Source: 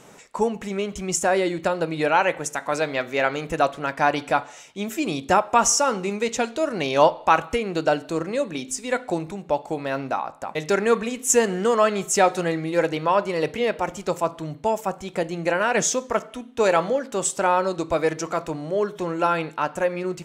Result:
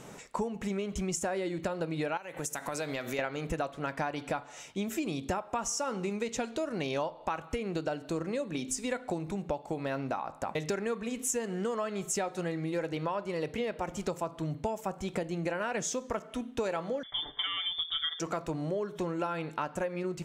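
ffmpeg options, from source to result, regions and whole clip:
ffmpeg -i in.wav -filter_complex "[0:a]asettb=1/sr,asplit=3[link_01][link_02][link_03];[link_01]atrim=end=2.174[link_04];[link_02]atrim=start=2.17:end=3.19,asetpts=PTS-STARTPTS,afade=type=in:duration=0.004:curve=qsin,afade=type=out:start_time=1.016:duration=0.004:curve=qsin,aemphasis=mode=production:type=50kf,acompressor=threshold=-31dB:ratio=4:attack=3.2:release=140:knee=1:detection=peak[link_05];[link_03]atrim=start=3.186[link_06];[link_04][link_05]acrossfade=duration=0.004:curve1=hsin:curve2=qsin[link_07];[link_07][link_06]acrossfade=duration=0.004:curve1=qsin:curve2=hsin,asettb=1/sr,asplit=3[link_08][link_09][link_10];[link_08]atrim=end=17.034[link_11];[link_09]atrim=start=17.03:end=18.2,asetpts=PTS-STARTPTS,afade=type=in:duration=0.004:curve=qsin,afade=type=out:start_time=1.166:duration=0.004:curve=qsin,lowpass=frequency=3100:width_type=q:width=0.5098,lowpass=frequency=3100:width_type=q:width=0.6013,lowpass=frequency=3100:width_type=q:width=0.9,lowpass=frequency=3100:width_type=q:width=2.563,afreqshift=-3700,asuperstop=centerf=2600:order=4:qfactor=2.2,aecho=1:1:6.8:0.65,atrim=end_sample=51597[link_12];[link_10]atrim=start=18.196[link_13];[link_11][link_12]acrossfade=duration=0.004:curve1=hsin:curve2=qsin[link_14];[link_14][link_13]acrossfade=duration=0.004:curve1=qsin:curve2=hsin,lowshelf=frequency=240:gain=6.5,acompressor=threshold=-28dB:ratio=12,volume=-1.5dB" out.wav

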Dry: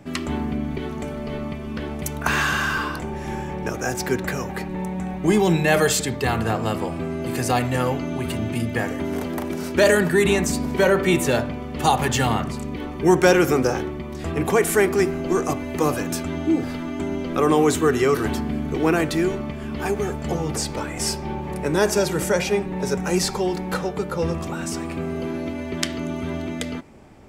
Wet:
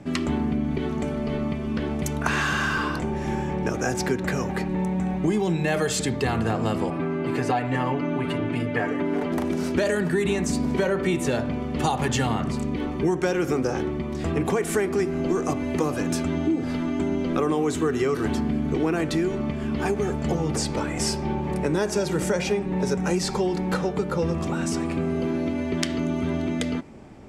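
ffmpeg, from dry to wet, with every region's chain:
ffmpeg -i in.wav -filter_complex "[0:a]asettb=1/sr,asplit=3[link_01][link_02][link_03];[link_01]atrim=end=6.904[link_04];[link_02]atrim=start=6.9:end=9.32,asetpts=PTS-STARTPTS,afade=type=in:duration=0.004:curve=qsin,afade=type=out:start_time=2.416:duration=0.004:curve=qsin,bass=frequency=250:gain=-8,treble=frequency=4000:gain=-14,aecho=1:1:6.9:0.77,atrim=end_sample=106722[link_05];[link_03]atrim=start=9.316[link_06];[link_04][link_05]acrossfade=duration=0.004:curve1=hsin:curve2=qsin[link_07];[link_07][link_06]acrossfade=duration=0.004:curve1=qsin:curve2=hsin,lowpass=9600,equalizer=frequency=220:width=0.63:gain=4,acompressor=threshold=-20dB:ratio=6" out.wav

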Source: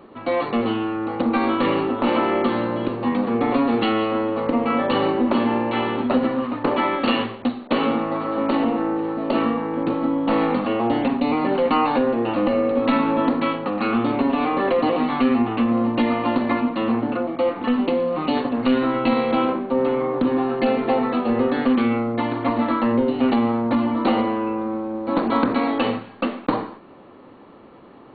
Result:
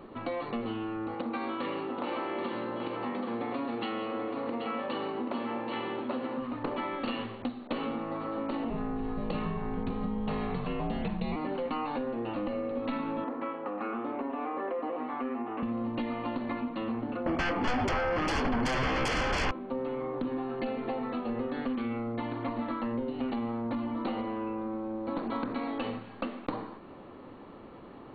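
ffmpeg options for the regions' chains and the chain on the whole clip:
ffmpeg -i in.wav -filter_complex "[0:a]asettb=1/sr,asplit=3[link_01][link_02][link_03];[link_01]atrim=end=1.144[link_04];[link_02]atrim=start=1.14:end=6.38,asetpts=PTS-STARTPTS,afade=type=in:duration=0.004:curve=qsin,afade=type=out:start_time=5.236:duration=0.004:curve=qsin,highpass=frequency=300:poles=1,aecho=1:1:781:0.447,atrim=end_sample=231084[link_05];[link_03]atrim=start=6.376[link_06];[link_04][link_05]acrossfade=duration=0.004:curve1=hsin:curve2=qsin[link_07];[link_07][link_06]acrossfade=duration=0.004:curve1=qsin:curve2=hsin,asettb=1/sr,asplit=3[link_08][link_09][link_10];[link_08]atrim=end=8.704[link_11];[link_09]atrim=start=8.7:end=11.36,asetpts=PTS-STARTPTS,afade=type=in:duration=0.004:curve=qsin,afade=type=out:start_time=2.656:duration=0.004:curve=qsin,highshelf=frequency=3700:gain=7,aeval=exprs='val(0)+0.02*(sin(2*PI*50*n/s)+sin(2*PI*2*50*n/s)/2+sin(2*PI*3*50*n/s)/3+sin(2*PI*4*50*n/s)/4+sin(2*PI*5*50*n/s)/5)':channel_layout=same,afreqshift=-66[link_12];[link_10]atrim=start=11.356[link_13];[link_11][link_12]acrossfade=duration=0.004:curve1=hsin:curve2=qsin[link_14];[link_14][link_13]acrossfade=duration=0.004:curve1=qsin:curve2=hsin,asettb=1/sr,asplit=3[link_15][link_16][link_17];[link_15]atrim=end=13.244[link_18];[link_16]atrim=start=13.24:end=15.63,asetpts=PTS-STARTPTS,afade=type=in:duration=0.004:curve=qsin,afade=type=out:start_time=2.386:duration=0.004:curve=qsin,acrossover=split=2700[link_19][link_20];[link_20]acompressor=threshold=-41dB:ratio=4:attack=1:release=60[link_21];[link_19][link_21]amix=inputs=2:normalize=0,acrossover=split=260 2300:gain=0.0708 1 0.112[link_22][link_23][link_24];[link_22][link_23][link_24]amix=inputs=3:normalize=0[link_25];[link_17]atrim=start=15.626[link_26];[link_18][link_25]acrossfade=duration=0.004:curve1=hsin:curve2=qsin[link_27];[link_27][link_26]acrossfade=duration=0.004:curve1=qsin:curve2=hsin,asettb=1/sr,asplit=3[link_28][link_29][link_30];[link_28]atrim=end=17.264[link_31];[link_29]atrim=start=17.26:end=19.51,asetpts=PTS-STARTPTS,afade=type=in:duration=0.004:curve=qsin,afade=type=out:start_time=2.246:duration=0.004:curve=qsin,aeval=exprs='0.398*sin(PI/2*5.62*val(0)/0.398)':channel_layout=same,asuperstop=centerf=3800:order=4:qfactor=5.6[link_32];[link_30]atrim=start=19.506[link_33];[link_31][link_32]acrossfade=duration=0.004:curve1=hsin:curve2=qsin[link_34];[link_34][link_33]acrossfade=duration=0.004:curve1=qsin:curve2=hsin,acompressor=threshold=-32dB:ratio=3,lowshelf=frequency=80:gain=10,volume=-3dB" out.wav

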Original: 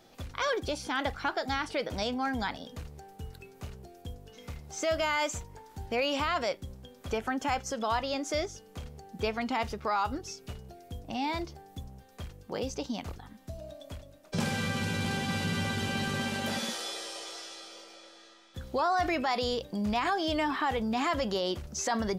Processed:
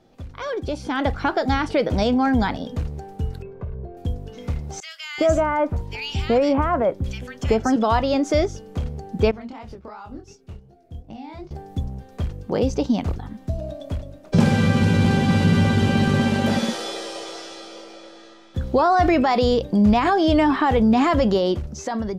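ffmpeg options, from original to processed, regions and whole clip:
ffmpeg -i in.wav -filter_complex "[0:a]asettb=1/sr,asplit=3[link_01][link_02][link_03];[link_01]atrim=end=3.424[link_04];[link_02]atrim=start=3.42:end=3.97,asetpts=PTS-STARTPTS,afade=type=in:duration=0.004:curve=qsin,afade=type=out:start_time=0.546:duration=0.004:curve=qsin,lowpass=1500,aecho=1:1:1.9:0.61,atrim=end_sample=24255,acompressor=threshold=-44dB:ratio=3:attack=3.2:release=140:knee=1:detection=peak[link_05];[link_03]atrim=start=3.966[link_06];[link_04][link_05]acrossfade=duration=0.004:curve1=hsin:curve2=qsin[link_07];[link_07][link_06]acrossfade=duration=0.004:curve1=qsin:curve2=hsin,asettb=1/sr,asplit=3[link_08][link_09][link_10];[link_08]atrim=end=4.804[link_11];[link_09]atrim=start=4.8:end=7.76,asetpts=PTS-STARTPTS,afade=type=in:duration=0.004:curve=qsin,afade=type=out:start_time=2.956:duration=0.004:curve=qsin,acrossover=split=2000[link_12][link_13];[link_12]adelay=380[link_14];[link_14][link_13]amix=inputs=2:normalize=0,atrim=end_sample=130536,adynamicequalizer=threshold=0.00501:dfrequency=1600:dqfactor=0.7:tfrequency=1600:tqfactor=0.7:attack=5:release=100:ratio=0.375:range=1.5:mode=cutabove:tftype=highshelf[link_15];[link_10]atrim=start=7.756[link_16];[link_11][link_15]acrossfade=duration=0.004:curve1=hsin:curve2=qsin[link_17];[link_17][link_16]acrossfade=duration=0.004:curve1=qsin:curve2=hsin,asettb=1/sr,asplit=3[link_18][link_19][link_20];[link_18]atrim=end=9.314[link_21];[link_19]atrim=start=9.31:end=11.51,asetpts=PTS-STARTPTS,afade=type=in:duration=0.004:curve=qsin,afade=type=out:start_time=2.196:duration=0.004:curve=qsin,agate=range=-14dB:threshold=-42dB:ratio=16:release=100:detection=peak,acompressor=threshold=-48dB:ratio=3:attack=3.2:release=140:knee=1:detection=peak,flanger=delay=18.5:depth=7.2:speed=2.7[link_22];[link_20]atrim=start=11.506[link_23];[link_21][link_22]acrossfade=duration=0.004:curve1=hsin:curve2=qsin[link_24];[link_24][link_23]acrossfade=duration=0.004:curve1=qsin:curve2=hsin,highshelf=frequency=10000:gain=-10,dynaudnorm=framelen=250:gausssize=7:maxgain=11dB,tiltshelf=frequency=700:gain=5.5" out.wav

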